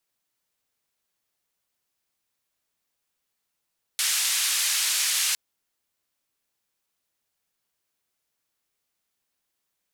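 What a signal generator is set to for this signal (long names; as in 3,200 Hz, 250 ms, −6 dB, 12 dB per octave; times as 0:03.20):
band-limited noise 2,000–10,000 Hz, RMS −24.5 dBFS 1.36 s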